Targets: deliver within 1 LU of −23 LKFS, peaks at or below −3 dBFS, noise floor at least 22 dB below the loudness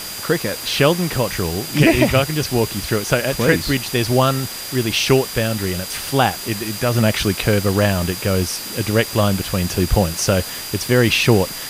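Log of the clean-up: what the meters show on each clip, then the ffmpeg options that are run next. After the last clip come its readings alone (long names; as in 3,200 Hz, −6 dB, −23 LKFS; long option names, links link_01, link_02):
interfering tone 4,800 Hz; level of the tone −33 dBFS; background noise floor −30 dBFS; target noise floor −40 dBFS; integrated loudness −18.0 LKFS; sample peak −1.5 dBFS; target loudness −23.0 LKFS
→ -af "bandreject=frequency=4800:width=30"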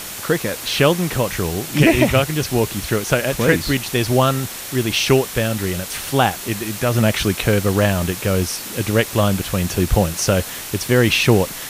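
interfering tone none found; background noise floor −31 dBFS; target noise floor −41 dBFS
→ -af "afftdn=noise_reduction=10:noise_floor=-31"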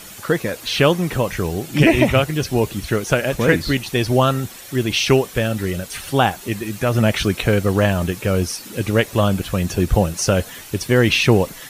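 background noise floor −38 dBFS; target noise floor −41 dBFS
→ -af "afftdn=noise_reduction=6:noise_floor=-38"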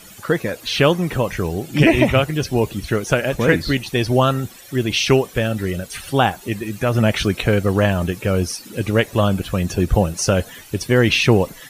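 background noise floor −42 dBFS; integrated loudness −19.0 LKFS; sample peak −2.0 dBFS; target loudness −23.0 LKFS
→ -af "volume=-4dB"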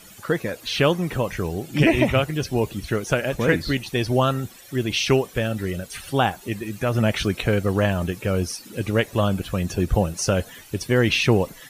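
integrated loudness −23.0 LKFS; sample peak −6.0 dBFS; background noise floor −46 dBFS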